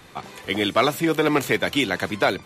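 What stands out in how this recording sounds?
noise floor -48 dBFS; spectral tilt -3.0 dB/oct

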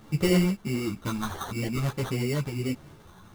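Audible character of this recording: a quantiser's noise floor 10-bit, dither triangular; phasing stages 12, 1.5 Hz, lowest notch 490–2100 Hz; aliases and images of a low sample rate 2500 Hz, jitter 0%; a shimmering, thickened sound

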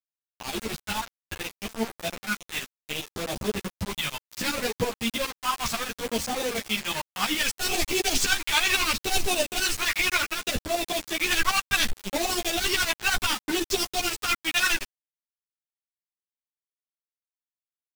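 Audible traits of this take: tremolo saw up 12 Hz, depth 80%; phasing stages 2, 0.67 Hz, lowest notch 450–1400 Hz; a quantiser's noise floor 6-bit, dither none; a shimmering, thickened sound

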